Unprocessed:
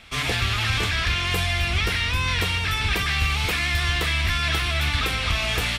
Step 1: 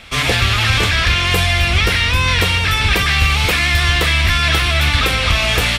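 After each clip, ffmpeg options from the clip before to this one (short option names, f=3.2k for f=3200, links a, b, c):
-af "equalizer=f=540:t=o:w=0.22:g=5,volume=8.5dB"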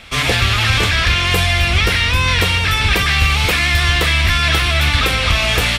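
-af anull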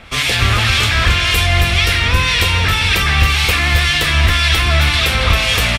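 -filter_complex "[0:a]acrossover=split=1900[a][b];[a]aeval=exprs='val(0)*(1-0.7/2+0.7/2*cos(2*PI*1.9*n/s))':c=same[c];[b]aeval=exprs='val(0)*(1-0.7/2-0.7/2*cos(2*PI*1.9*n/s))':c=same[d];[c][d]amix=inputs=2:normalize=0,asplit=2[e][f];[f]aecho=0:1:273:0.473[g];[e][g]amix=inputs=2:normalize=0,volume=3.5dB"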